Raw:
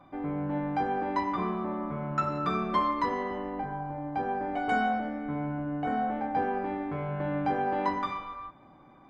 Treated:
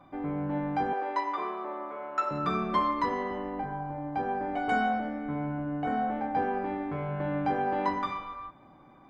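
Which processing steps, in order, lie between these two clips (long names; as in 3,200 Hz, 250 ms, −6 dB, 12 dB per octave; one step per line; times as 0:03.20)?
0:00.93–0:02.31: high-pass filter 380 Hz 24 dB per octave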